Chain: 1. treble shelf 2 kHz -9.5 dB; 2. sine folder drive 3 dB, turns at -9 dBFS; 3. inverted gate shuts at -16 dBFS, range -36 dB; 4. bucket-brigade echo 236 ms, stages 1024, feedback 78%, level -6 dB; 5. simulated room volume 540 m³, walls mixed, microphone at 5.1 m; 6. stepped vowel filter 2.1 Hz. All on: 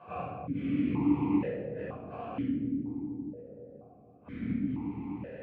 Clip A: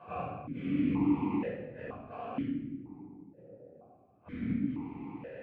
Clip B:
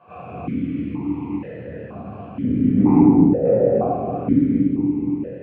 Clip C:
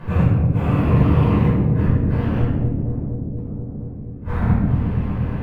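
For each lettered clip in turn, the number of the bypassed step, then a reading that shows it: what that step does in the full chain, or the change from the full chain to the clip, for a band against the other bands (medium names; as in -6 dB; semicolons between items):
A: 4, 2 kHz band +2.0 dB; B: 3, momentary loudness spread change +5 LU; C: 6, 125 Hz band +12.0 dB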